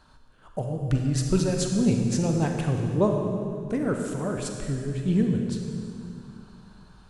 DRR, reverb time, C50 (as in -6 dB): 2.5 dB, 2.4 s, 3.5 dB